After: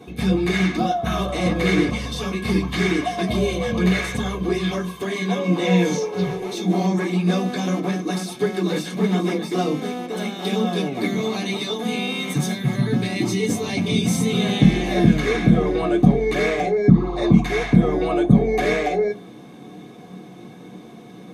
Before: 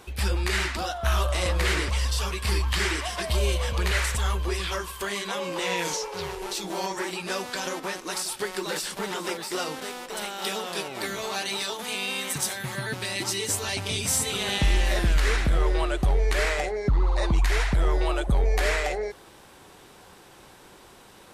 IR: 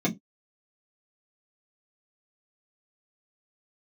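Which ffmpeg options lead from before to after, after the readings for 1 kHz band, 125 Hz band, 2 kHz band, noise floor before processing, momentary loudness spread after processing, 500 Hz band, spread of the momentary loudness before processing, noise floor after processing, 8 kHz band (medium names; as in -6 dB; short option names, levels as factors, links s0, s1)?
+4.5 dB, +7.5 dB, +1.5 dB, -51 dBFS, 9 LU, +8.5 dB, 7 LU, -41 dBFS, -4.5 dB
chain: -filter_complex "[1:a]atrim=start_sample=2205[s0];[0:a][s0]afir=irnorm=-1:irlink=0,volume=0.501"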